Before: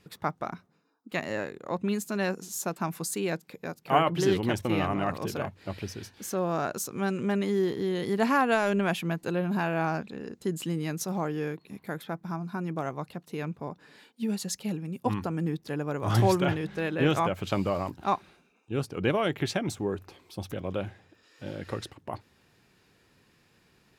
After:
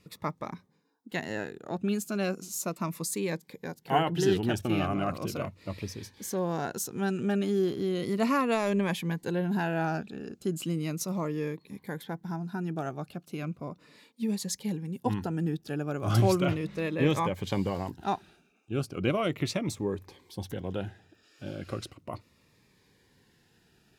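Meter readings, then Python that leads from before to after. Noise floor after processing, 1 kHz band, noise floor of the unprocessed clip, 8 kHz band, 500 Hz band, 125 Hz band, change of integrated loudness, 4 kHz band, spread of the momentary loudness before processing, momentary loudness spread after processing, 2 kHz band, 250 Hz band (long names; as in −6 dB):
−66 dBFS, −3.0 dB, −65 dBFS, 0.0 dB, −1.5 dB, 0.0 dB, −1.0 dB, −1.0 dB, 14 LU, 14 LU, −3.5 dB, −0.5 dB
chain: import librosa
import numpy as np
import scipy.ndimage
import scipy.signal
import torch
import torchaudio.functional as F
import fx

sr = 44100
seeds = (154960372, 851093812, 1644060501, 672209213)

y = fx.notch_cascade(x, sr, direction='falling', hz=0.36)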